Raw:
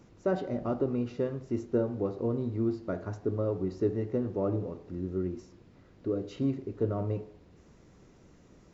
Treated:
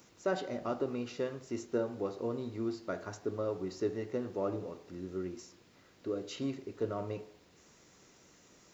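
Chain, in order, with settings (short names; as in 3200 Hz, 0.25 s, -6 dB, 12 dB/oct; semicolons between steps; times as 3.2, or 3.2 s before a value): tilt +3.5 dB/oct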